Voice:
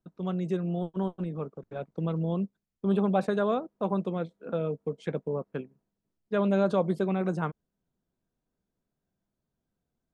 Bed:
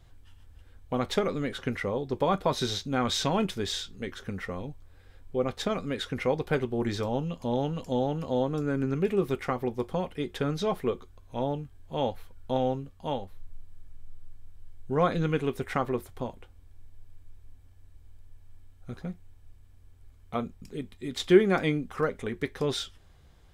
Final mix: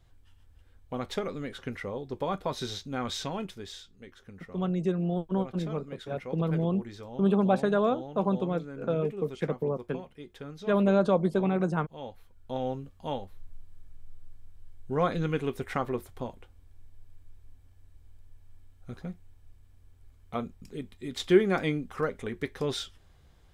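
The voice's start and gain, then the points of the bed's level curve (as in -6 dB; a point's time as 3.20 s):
4.35 s, +1.5 dB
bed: 3.09 s -5.5 dB
3.89 s -13 dB
11.98 s -13 dB
12.86 s -2 dB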